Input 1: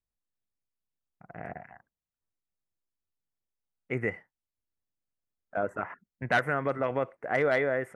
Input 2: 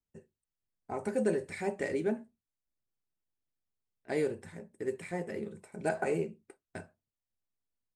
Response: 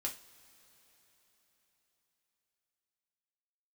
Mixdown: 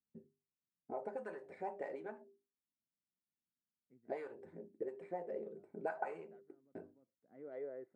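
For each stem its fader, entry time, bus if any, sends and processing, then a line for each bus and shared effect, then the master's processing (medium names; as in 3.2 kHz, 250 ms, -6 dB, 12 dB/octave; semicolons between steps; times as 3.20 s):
-13.5 dB, 0.00 s, no send, auto duck -22 dB, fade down 0.30 s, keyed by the second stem
+2.5 dB, 0.00 s, no send, hum notches 50/100/150/200/250/300/350/400 Hz; compression 1.5:1, threshold -38 dBFS, peak gain reduction 5 dB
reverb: none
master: band-stop 1.1 kHz, Q 21; auto-wah 210–1100 Hz, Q 2.6, up, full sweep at -29 dBFS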